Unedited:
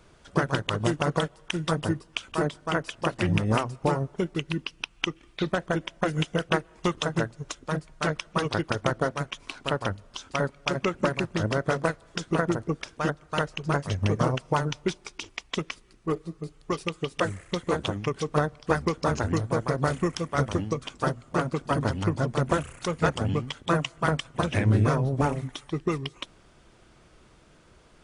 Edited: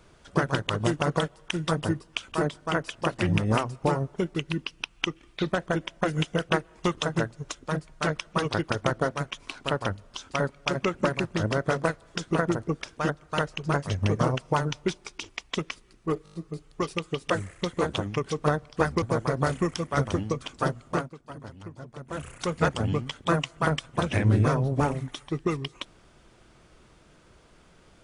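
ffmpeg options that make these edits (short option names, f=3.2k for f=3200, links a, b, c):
-filter_complex "[0:a]asplit=9[a][b][c][d][e][f][g][h][i];[a]atrim=end=16.262[j];[b]atrim=start=16.238:end=16.262[k];[c]atrim=start=16.238:end=16.262[l];[d]atrim=start=16.238:end=16.262[m];[e]atrim=start=16.238:end=16.262[n];[f]atrim=start=16.238:end=18.922[o];[g]atrim=start=19.428:end=21.5,asetpts=PTS-STARTPTS,afade=t=out:st=1.922:d=0.15:silence=0.158489[p];[h]atrim=start=21.5:end=22.52,asetpts=PTS-STARTPTS,volume=-16dB[q];[i]atrim=start=22.52,asetpts=PTS-STARTPTS,afade=t=in:d=0.15:silence=0.158489[r];[j][k]acrossfade=d=0.004:c1=hsin:c2=hsin[s];[s][l]acrossfade=d=0.004:c1=hsin:c2=hsin[t];[t][m]acrossfade=d=0.004:c1=hsin:c2=hsin[u];[u][n]acrossfade=d=0.004:c1=hsin:c2=hsin[v];[v][o]acrossfade=d=0.004:c1=hsin:c2=hsin[w];[p][q][r]concat=n=3:v=0:a=1[x];[w][x]acrossfade=d=0.004:c1=hsin:c2=hsin"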